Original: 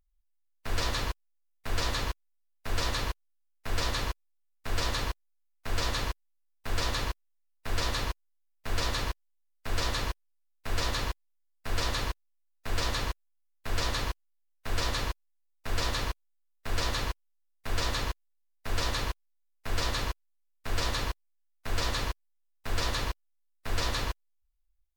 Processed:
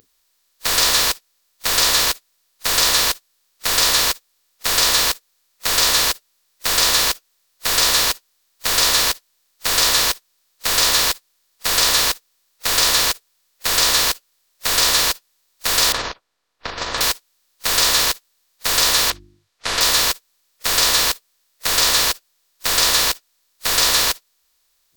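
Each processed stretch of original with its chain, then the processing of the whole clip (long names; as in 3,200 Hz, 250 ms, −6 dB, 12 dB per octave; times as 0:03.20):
0:15.92–0:17.01: low-pass filter 1,100 Hz + compressor whose output falls as the input rises −36 dBFS
0:19.10–0:19.81: low-pass filter 3,200 Hz + mains-hum notches 50/100/150/200/250/300/350 Hz
whole clip: compressor on every frequency bin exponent 0.4; noise reduction from a noise print of the clip's start 27 dB; RIAA equalisation recording; level +8 dB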